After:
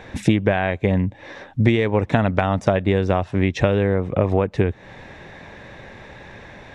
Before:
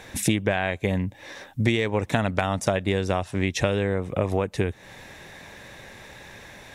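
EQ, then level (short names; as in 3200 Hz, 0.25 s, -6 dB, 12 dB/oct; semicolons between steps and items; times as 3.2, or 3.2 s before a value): tape spacing loss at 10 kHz 23 dB; +6.5 dB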